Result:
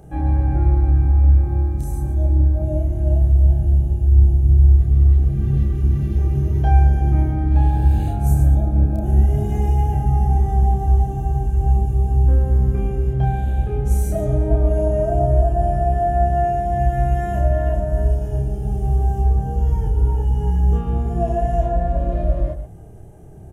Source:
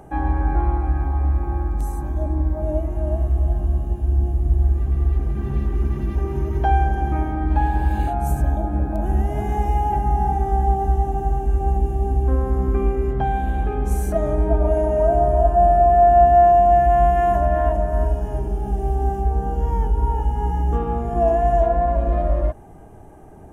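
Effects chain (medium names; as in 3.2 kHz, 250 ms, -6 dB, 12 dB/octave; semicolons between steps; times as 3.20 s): graphic EQ 125/250/1000/2000 Hz +8/-6/-12/-5 dB; loudspeakers at several distances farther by 10 m -2 dB, 50 m -10 dB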